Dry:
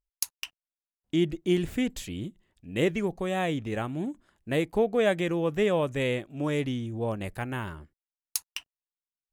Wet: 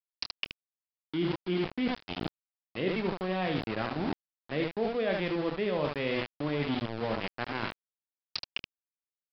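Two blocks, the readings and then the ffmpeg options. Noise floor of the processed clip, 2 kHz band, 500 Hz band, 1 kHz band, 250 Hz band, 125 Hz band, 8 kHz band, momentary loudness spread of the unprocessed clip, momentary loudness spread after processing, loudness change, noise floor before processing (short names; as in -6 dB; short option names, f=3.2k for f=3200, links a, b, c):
under -85 dBFS, -1.5 dB, -4.5 dB, -0.5 dB, -3.5 dB, -5.0 dB, under -25 dB, 13 LU, 9 LU, -4.0 dB, under -85 dBFS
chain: -filter_complex "[0:a]asplit=2[a][b];[b]aecho=0:1:27|76:0.335|0.447[c];[a][c]amix=inputs=2:normalize=0,afftfilt=real='re*gte(hypot(re,im),0.00794)':imag='im*gte(hypot(re,im),0.00794)':win_size=1024:overlap=0.75,highpass=f=130:w=0.5412,highpass=f=130:w=1.3066,aeval=exprs='val(0)*gte(abs(val(0)),0.0316)':c=same,aresample=11025,aresample=44100,areverse,acompressor=threshold=-33dB:ratio=5,areverse,volume=5dB"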